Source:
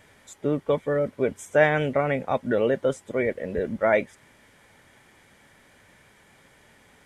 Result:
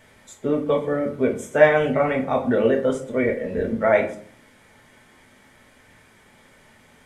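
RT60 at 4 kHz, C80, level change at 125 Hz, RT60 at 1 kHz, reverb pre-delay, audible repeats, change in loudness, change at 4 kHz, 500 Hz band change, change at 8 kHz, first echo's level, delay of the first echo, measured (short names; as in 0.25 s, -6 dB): 0.30 s, 14.5 dB, +0.5 dB, 0.50 s, 4 ms, none, +3.5 dB, +2.0 dB, +3.5 dB, n/a, none, none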